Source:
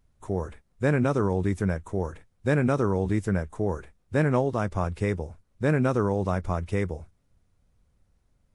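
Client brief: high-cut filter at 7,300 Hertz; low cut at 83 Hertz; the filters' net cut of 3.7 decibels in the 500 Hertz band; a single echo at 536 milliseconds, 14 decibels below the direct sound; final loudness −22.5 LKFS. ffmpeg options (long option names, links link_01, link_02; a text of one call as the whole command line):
ffmpeg -i in.wav -af "highpass=83,lowpass=7300,equalizer=frequency=500:width_type=o:gain=-4.5,aecho=1:1:536:0.2,volume=6dB" out.wav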